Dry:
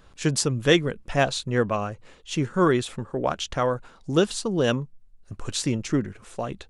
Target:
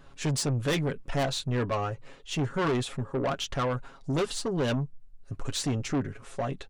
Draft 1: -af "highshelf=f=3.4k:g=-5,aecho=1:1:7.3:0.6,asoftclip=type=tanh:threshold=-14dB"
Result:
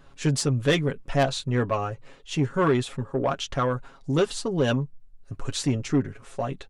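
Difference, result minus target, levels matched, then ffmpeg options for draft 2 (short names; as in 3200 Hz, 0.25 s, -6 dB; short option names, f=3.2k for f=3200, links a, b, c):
soft clip: distortion -8 dB
-af "highshelf=f=3.4k:g=-5,aecho=1:1:7.3:0.6,asoftclip=type=tanh:threshold=-23.5dB"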